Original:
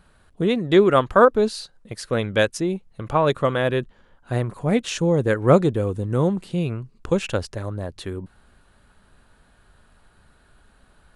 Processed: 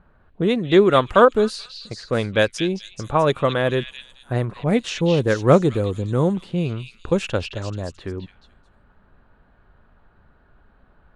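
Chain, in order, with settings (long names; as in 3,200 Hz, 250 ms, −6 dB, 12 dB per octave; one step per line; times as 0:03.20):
low-pass that shuts in the quiet parts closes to 1,500 Hz, open at −15.5 dBFS
echo through a band-pass that steps 217 ms, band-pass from 3,400 Hz, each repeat 0.7 octaves, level −2 dB
level +1 dB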